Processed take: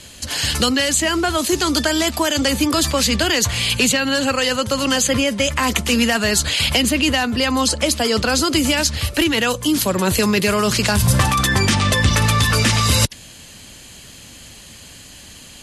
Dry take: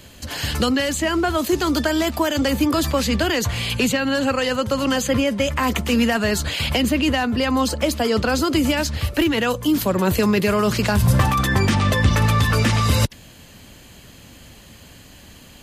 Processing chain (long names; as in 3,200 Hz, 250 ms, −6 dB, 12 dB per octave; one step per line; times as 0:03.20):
Butterworth low-pass 12,000 Hz 72 dB per octave
high-shelf EQ 2,600 Hz +10.5 dB